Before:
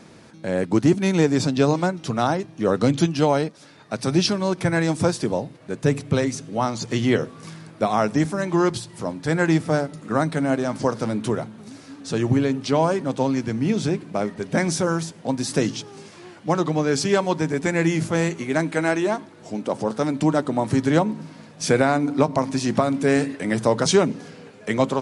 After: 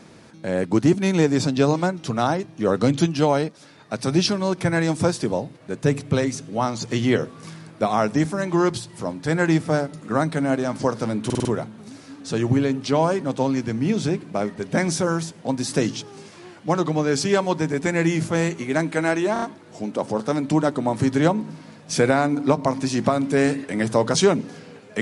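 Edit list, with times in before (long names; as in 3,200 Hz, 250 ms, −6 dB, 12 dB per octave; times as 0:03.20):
0:11.25: stutter 0.05 s, 5 plays
0:19.13: stutter 0.03 s, 4 plays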